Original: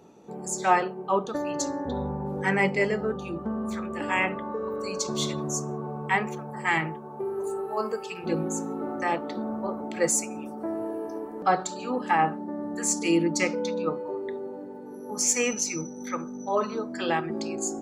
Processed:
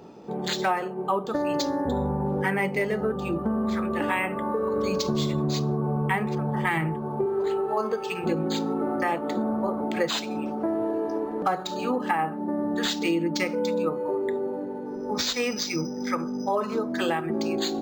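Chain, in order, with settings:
0:04.76–0:07.26: low-shelf EQ 230 Hz +10.5 dB
downward compressor 6 to 1, threshold −29 dBFS, peak gain reduction 13.5 dB
linearly interpolated sample-rate reduction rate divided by 4×
level +7 dB

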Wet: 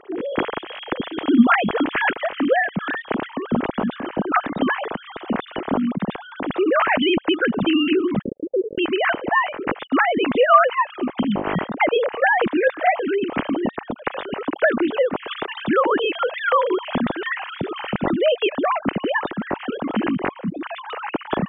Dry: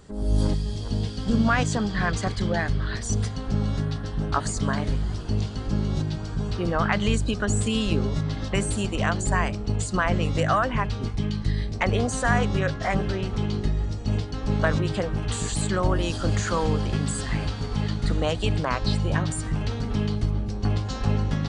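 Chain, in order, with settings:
three sine waves on the formant tracks
0:08.22–0:08.78: Butterworth low-pass 550 Hz 96 dB per octave
in parallel at +1 dB: downward compressor, threshold −28 dBFS, peak gain reduction 18 dB

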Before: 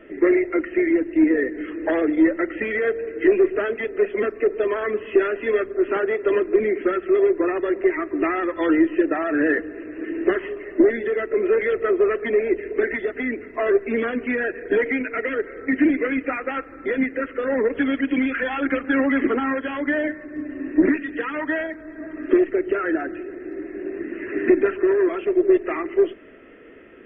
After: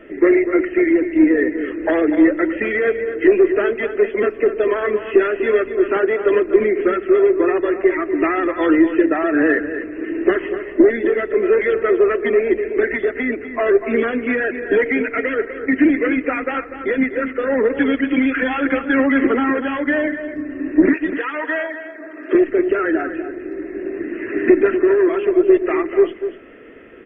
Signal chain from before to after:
0:20.93–0:22.35: high-pass filter 430 Hz 12 dB per octave
slap from a distant wall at 42 metres, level −10 dB
level +4 dB

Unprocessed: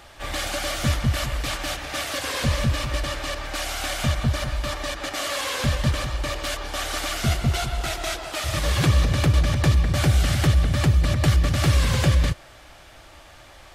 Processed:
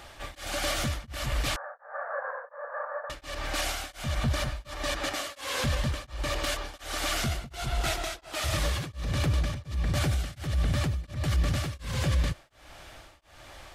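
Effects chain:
0:01.56–0:03.10: Chebyshev band-pass filter 480–1,700 Hz, order 5
brickwall limiter −18.5 dBFS, peak gain reduction 9 dB
tremolo along a rectified sine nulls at 1.4 Hz

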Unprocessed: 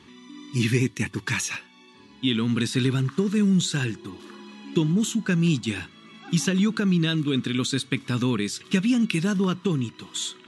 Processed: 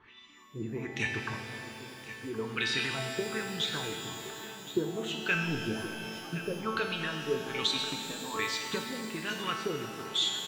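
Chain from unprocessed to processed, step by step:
high-shelf EQ 6,500 Hz +10.5 dB
harmonic and percussive parts rebalanced percussive +9 dB
parametric band 220 Hz −14 dB 0.74 octaves
0:05.32–0:05.72: power curve on the samples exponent 0.7
auto-filter low-pass sine 1.2 Hz 460–3,500 Hz
tuned comb filter 220 Hz, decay 1.1 s, mix 90%
0:07.67–0:08.37: phaser with its sweep stopped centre 410 Hz, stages 6
single-tap delay 1,069 ms −14 dB
reverb with rising layers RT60 3.7 s, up +12 semitones, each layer −8 dB, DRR 5 dB
level +4.5 dB

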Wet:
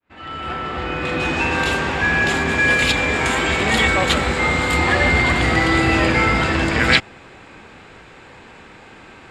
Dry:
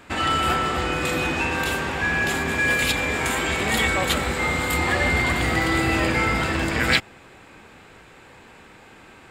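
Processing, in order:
fade in at the beginning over 1.58 s
low-pass filter 3,500 Hz 12 dB per octave, from 0:01.20 6,700 Hz
level +5 dB

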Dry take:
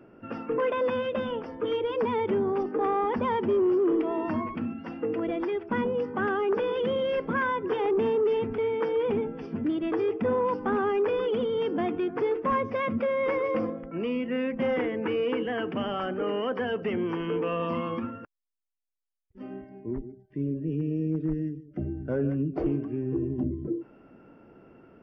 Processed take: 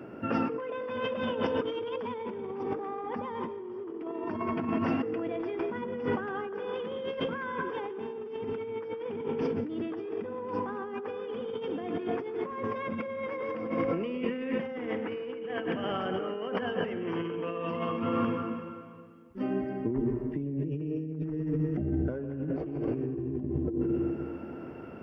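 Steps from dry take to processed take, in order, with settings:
high-pass filter 64 Hz
on a send at −5 dB: convolution reverb RT60 2.0 s, pre-delay 108 ms
on the sum: compressor whose output falls as the input rises −35 dBFS, ratio −1
level +1.5 dB

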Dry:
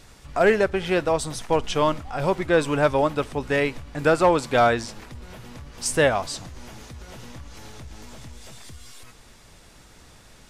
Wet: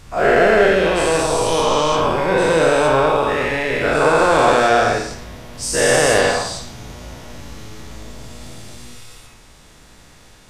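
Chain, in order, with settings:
every bin's largest magnitude spread in time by 480 ms
on a send: convolution reverb RT60 0.65 s, pre-delay 37 ms, DRR 4 dB
on the sum: level −3.5 dB

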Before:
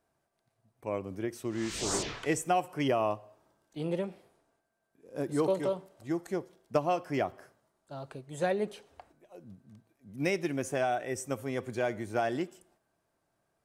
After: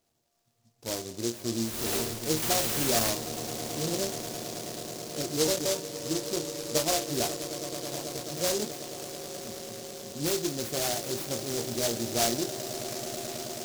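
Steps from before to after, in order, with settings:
resonators tuned to a chord D#2 fifth, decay 0.21 s
echo that builds up and dies away 108 ms, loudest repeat 8, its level −17.5 dB
in parallel at −3 dB: hard clipping −37.5 dBFS, distortion −9 dB
0:02.42–0:03.10: on the sum: bit-depth reduction 6 bits, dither triangular
short delay modulated by noise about 5,400 Hz, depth 0.21 ms
level +6.5 dB

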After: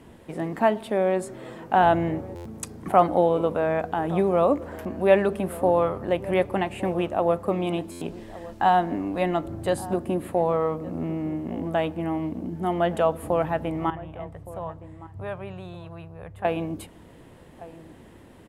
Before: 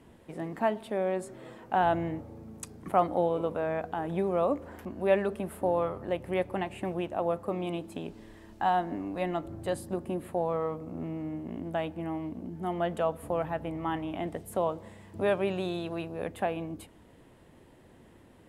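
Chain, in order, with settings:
0:13.90–0:16.45: drawn EQ curve 130 Hz 0 dB, 240 Hz −21 dB, 1,100 Hz −9 dB, 3,400 Hz −17 dB
slap from a distant wall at 200 metres, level −17 dB
buffer that repeats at 0:02.35/0:07.91, samples 512, times 8
level +7 dB

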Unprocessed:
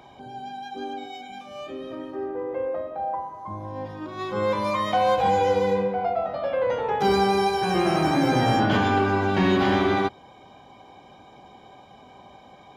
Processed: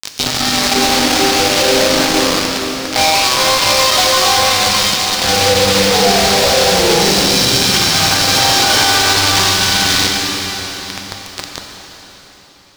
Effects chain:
backwards echo 951 ms −5 dB
downward compressor 4 to 1, threshold −36 dBFS, peak gain reduction 17 dB
all-pass phaser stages 2, 0.2 Hz, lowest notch 170–3,200 Hz
log-companded quantiser 2 bits
convolution reverb RT60 4.4 s, pre-delay 5 ms, DRR 1 dB
gain into a clipping stage and back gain 20.5 dB
parametric band 4,800 Hz +12 dB 1.3 octaves
boost into a limiter +15.5 dB
level −1 dB

